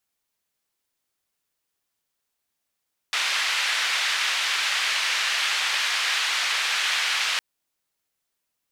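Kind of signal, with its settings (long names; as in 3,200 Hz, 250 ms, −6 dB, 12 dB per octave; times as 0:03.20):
band-limited noise 1,600–3,100 Hz, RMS −24.5 dBFS 4.26 s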